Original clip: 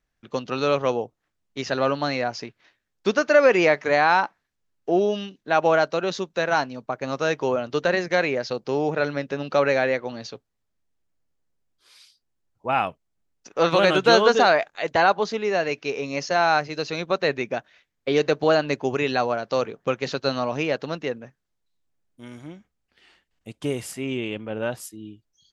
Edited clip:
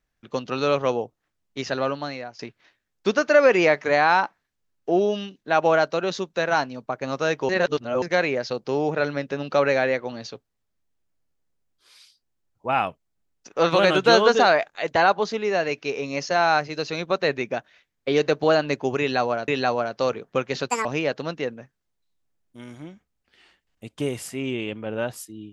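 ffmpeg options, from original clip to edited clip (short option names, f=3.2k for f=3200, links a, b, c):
-filter_complex "[0:a]asplit=7[a][b][c][d][e][f][g];[a]atrim=end=2.39,asetpts=PTS-STARTPTS,afade=t=out:st=1.6:d=0.79:silence=0.158489[h];[b]atrim=start=2.39:end=7.492,asetpts=PTS-STARTPTS,afade=t=in:d=0.004:c=hsin:silence=0.158489[i];[c]atrim=start=7.488:end=8.022,asetpts=PTS-STARTPTS,areverse[j];[d]atrim=start=8.018:end=19.482[k];[e]atrim=start=18.998:end=20.224[l];[f]atrim=start=20.22:end=20.49,asetpts=PTS-STARTPTS,asetrate=78939,aresample=44100[m];[g]atrim=start=20.486[n];[h][i]concat=n=2:v=0:a=1[o];[o][j]acrossfade=d=0.004:c1=hsin:c2=hsin[p];[p][k]acrossfade=d=0.004:c1=hsin:c2=hsin[q];[q][l]acrossfade=d=0.004:c1=hsin:c2=hsin[r];[r][m]acrossfade=d=0.004:c1=hsin:c2=hsin[s];[s][n]acrossfade=d=0.004:c1=hsin:c2=hsin"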